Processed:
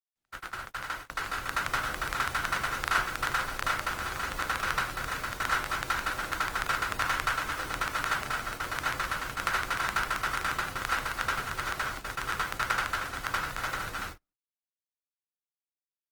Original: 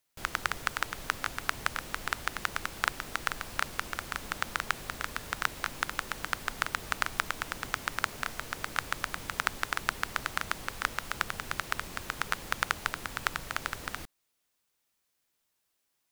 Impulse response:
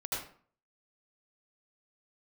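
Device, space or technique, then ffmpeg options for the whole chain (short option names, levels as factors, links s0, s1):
speakerphone in a meeting room: -filter_complex "[1:a]atrim=start_sample=2205[s0];[0:a][s0]afir=irnorm=-1:irlink=0,dynaudnorm=f=200:g=13:m=5.62,agate=range=0.0141:threshold=0.0355:ratio=16:detection=peak,volume=0.376" -ar 48000 -c:a libopus -b:a 20k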